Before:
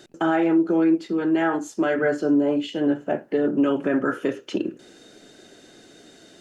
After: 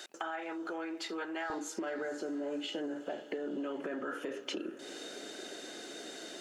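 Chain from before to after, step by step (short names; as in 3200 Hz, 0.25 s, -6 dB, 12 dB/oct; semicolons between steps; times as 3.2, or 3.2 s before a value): limiter -21 dBFS, peak gain reduction 9 dB; HPF 800 Hz 12 dB/oct, from 1.5 s 330 Hz; compressor, threshold -41 dBFS, peak gain reduction 14.5 dB; diffused feedback echo 0.496 s, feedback 58%, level -16 dB; gain +5 dB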